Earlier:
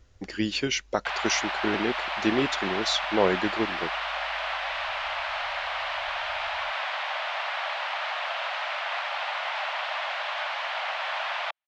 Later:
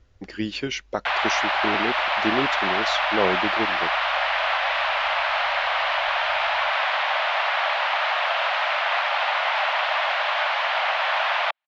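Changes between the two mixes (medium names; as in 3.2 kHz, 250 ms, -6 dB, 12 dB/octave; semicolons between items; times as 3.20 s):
background +8.5 dB; master: add distance through air 86 m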